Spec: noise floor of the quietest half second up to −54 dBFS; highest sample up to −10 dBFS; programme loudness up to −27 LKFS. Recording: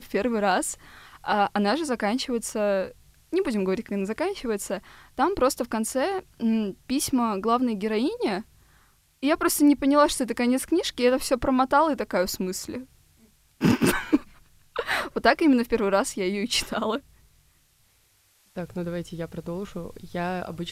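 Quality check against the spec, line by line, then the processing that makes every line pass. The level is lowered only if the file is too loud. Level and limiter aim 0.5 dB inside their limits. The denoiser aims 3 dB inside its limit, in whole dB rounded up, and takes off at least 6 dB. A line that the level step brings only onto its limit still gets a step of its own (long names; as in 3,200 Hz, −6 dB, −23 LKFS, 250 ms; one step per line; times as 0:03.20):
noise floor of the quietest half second −63 dBFS: in spec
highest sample −6.0 dBFS: out of spec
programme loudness −25.0 LKFS: out of spec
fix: level −2.5 dB
brickwall limiter −10.5 dBFS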